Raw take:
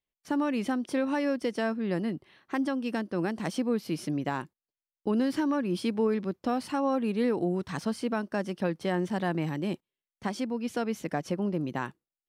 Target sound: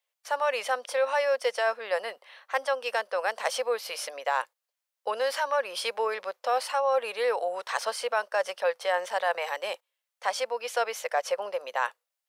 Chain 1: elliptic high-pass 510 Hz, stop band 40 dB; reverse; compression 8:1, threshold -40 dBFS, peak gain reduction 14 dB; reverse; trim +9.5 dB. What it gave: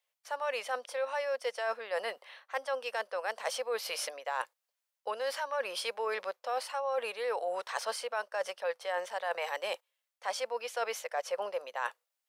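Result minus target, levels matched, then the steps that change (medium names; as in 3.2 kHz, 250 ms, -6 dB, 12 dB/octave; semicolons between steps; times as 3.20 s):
compression: peak gain reduction +8.5 dB
change: compression 8:1, threshold -30.5 dBFS, peak gain reduction 6 dB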